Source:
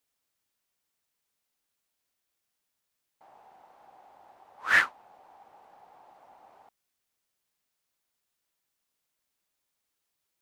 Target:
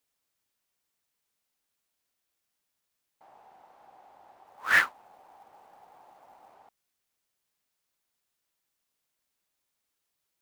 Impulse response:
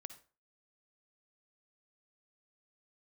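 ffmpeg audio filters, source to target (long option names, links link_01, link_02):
-filter_complex "[0:a]asettb=1/sr,asplit=3[link_01][link_02][link_03];[link_01]atrim=end=4.464[link_04];[link_02]atrim=start=4.46:end=6.54,asetpts=PTS-STARTPTS,afade=type=in:duration=0.004:curve=qsin,afade=type=out:start_time=2.076:duration=0.004:curve=qsin,acrusher=bits=5:mode=log:mix=0:aa=0.000001[link_05];[link_03]atrim=start=6.536[link_06];[link_04][link_05]acrossfade=duration=0.004:curve1=hsin:curve2=qsin[link_07];[link_07][link_06]acrossfade=duration=0.004:curve1=qsin:curve2=hsin"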